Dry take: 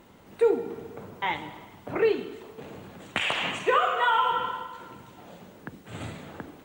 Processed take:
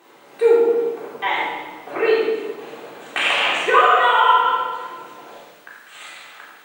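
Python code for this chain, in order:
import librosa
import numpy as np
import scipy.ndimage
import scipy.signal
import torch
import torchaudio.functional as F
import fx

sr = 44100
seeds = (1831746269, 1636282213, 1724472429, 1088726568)

y = fx.highpass(x, sr, hz=fx.steps((0.0, 460.0), (5.35, 1500.0)), slope=12)
y = fx.room_shoebox(y, sr, seeds[0], volume_m3=790.0, walls='mixed', distance_m=3.6)
y = y * librosa.db_to_amplitude(2.0)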